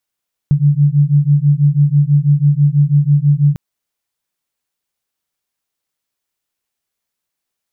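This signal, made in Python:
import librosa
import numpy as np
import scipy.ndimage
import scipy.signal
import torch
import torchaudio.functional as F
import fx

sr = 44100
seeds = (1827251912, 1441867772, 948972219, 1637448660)

y = fx.two_tone_beats(sr, length_s=3.05, hz=142.0, beat_hz=6.1, level_db=-11.5)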